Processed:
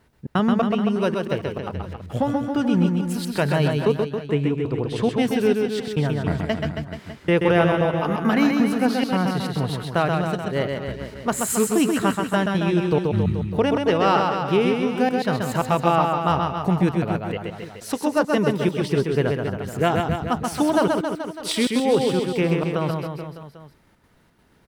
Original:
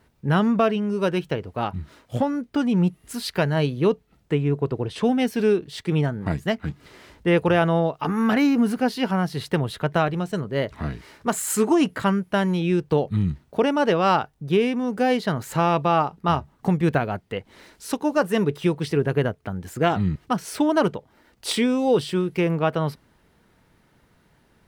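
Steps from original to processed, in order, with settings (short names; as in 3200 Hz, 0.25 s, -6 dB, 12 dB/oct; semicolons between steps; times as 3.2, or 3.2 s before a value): step gate "xxx.xxx.xxxxx.x" 171 bpm -60 dB; reverse bouncing-ball echo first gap 0.13 s, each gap 1.1×, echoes 5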